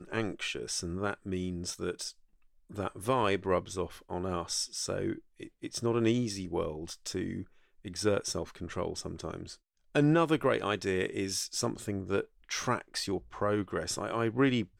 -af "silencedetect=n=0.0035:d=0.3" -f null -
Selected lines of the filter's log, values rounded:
silence_start: 2.11
silence_end: 2.70 | silence_duration: 0.59
silence_start: 7.44
silence_end: 7.85 | silence_duration: 0.41
silence_start: 9.55
silence_end: 9.95 | silence_duration: 0.39